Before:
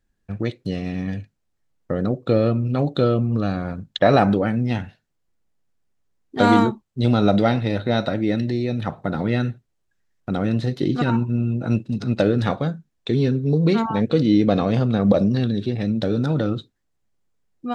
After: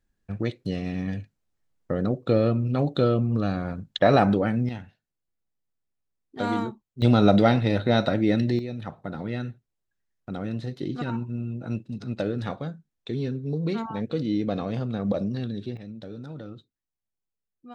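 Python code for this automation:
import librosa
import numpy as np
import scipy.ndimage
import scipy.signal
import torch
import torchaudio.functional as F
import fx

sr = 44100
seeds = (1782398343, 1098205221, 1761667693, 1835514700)

y = fx.gain(x, sr, db=fx.steps((0.0, -3.0), (4.69, -11.5), (7.02, -0.5), (8.59, -9.5), (15.77, -17.5)))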